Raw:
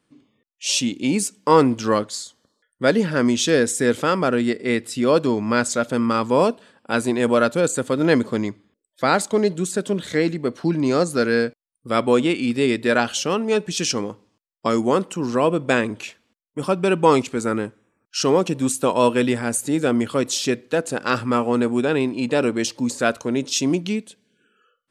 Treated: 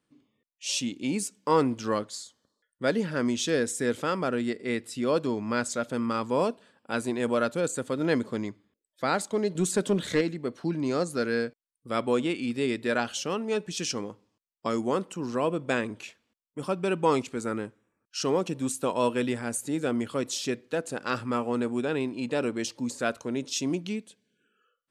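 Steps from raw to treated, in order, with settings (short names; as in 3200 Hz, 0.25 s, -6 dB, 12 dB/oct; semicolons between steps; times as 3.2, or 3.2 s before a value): 9.55–10.21 sine folder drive 3 dB, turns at -7.5 dBFS; gain -8.5 dB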